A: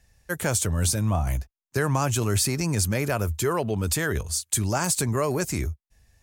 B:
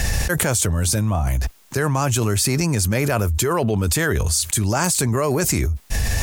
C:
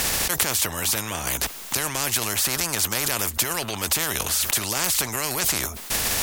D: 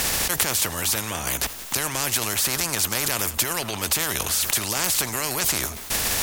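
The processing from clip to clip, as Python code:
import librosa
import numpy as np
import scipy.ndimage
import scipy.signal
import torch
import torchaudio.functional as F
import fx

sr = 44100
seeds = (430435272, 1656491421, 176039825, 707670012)

y1 = fx.env_flatten(x, sr, amount_pct=100)
y1 = y1 * librosa.db_to_amplitude(1.5)
y2 = fx.spectral_comp(y1, sr, ratio=4.0)
y3 = fx.echo_multitap(y2, sr, ms=(83, 175), db=(-19.5, -17.5))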